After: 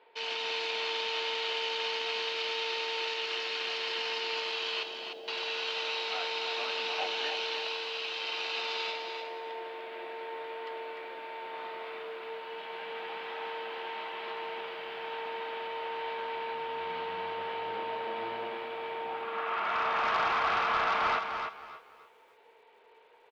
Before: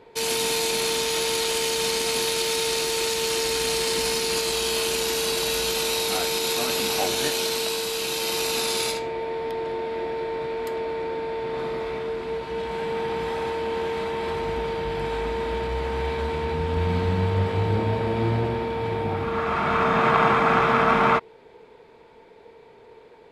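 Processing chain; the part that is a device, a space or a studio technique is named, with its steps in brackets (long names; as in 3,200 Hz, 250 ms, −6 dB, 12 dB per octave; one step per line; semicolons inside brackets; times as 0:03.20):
megaphone (band-pass filter 670–3,500 Hz; parametric band 2,900 Hz +7 dB 0.27 octaves; hard clipping −18.5 dBFS, distortion −16 dB)
0:04.83–0:05.28: elliptic band-pass filter 160–710 Hz
low-pass filter 5,500 Hz 24 dB per octave
repeating echo 300 ms, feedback 17%, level −7 dB
feedback echo at a low word length 286 ms, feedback 35%, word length 9 bits, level −15 dB
level −6.5 dB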